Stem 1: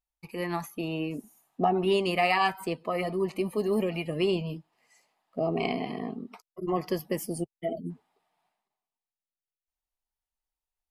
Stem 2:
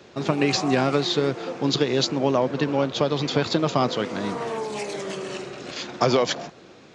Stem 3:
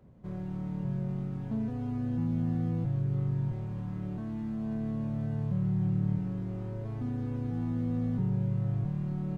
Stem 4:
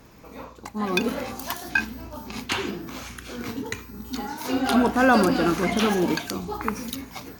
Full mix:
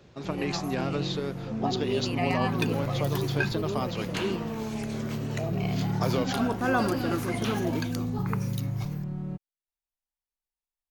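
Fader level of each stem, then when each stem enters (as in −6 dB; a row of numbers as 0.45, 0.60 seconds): −6.5, −10.0, −0.5, −8.0 decibels; 0.00, 0.00, 0.00, 1.65 seconds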